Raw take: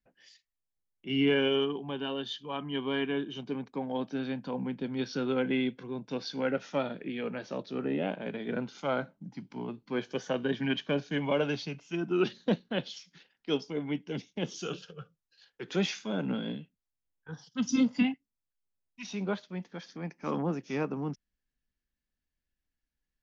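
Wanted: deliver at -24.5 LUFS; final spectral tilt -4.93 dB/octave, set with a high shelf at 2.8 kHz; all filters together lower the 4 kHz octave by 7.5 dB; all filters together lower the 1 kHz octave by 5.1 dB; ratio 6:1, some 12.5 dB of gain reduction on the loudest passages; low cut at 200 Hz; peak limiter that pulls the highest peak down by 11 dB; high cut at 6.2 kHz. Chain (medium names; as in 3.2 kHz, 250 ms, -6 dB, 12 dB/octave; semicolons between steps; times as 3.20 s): high-pass 200 Hz; low-pass 6.2 kHz; peaking EQ 1 kHz -6 dB; treble shelf 2.8 kHz -4 dB; peaking EQ 4 kHz -7 dB; compression 6:1, threshold -37 dBFS; trim +23 dB; peak limiter -15 dBFS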